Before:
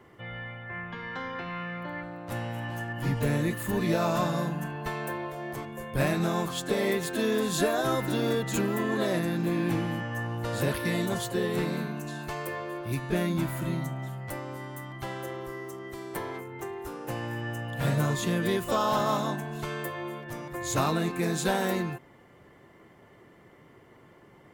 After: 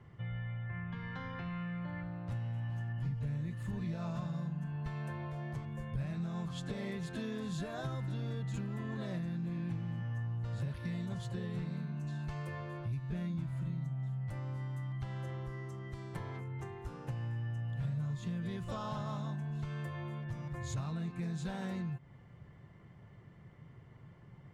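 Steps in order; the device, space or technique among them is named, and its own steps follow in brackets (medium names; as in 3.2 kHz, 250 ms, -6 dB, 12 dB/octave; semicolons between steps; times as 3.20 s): jukebox (low-pass 6.5 kHz 12 dB/octave; resonant low shelf 210 Hz +12.5 dB, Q 1.5; compression 4:1, threshold -29 dBFS, peak gain reduction 16 dB); trim -8 dB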